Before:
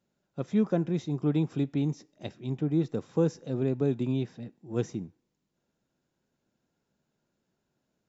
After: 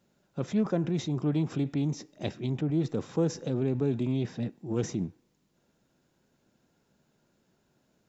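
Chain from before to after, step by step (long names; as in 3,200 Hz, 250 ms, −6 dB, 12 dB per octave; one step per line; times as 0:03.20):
in parallel at 0 dB: compressor whose output falls as the input rises −37 dBFS, ratio −1
on the sum: highs frequency-modulated by the lows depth 0.12 ms
level −2.5 dB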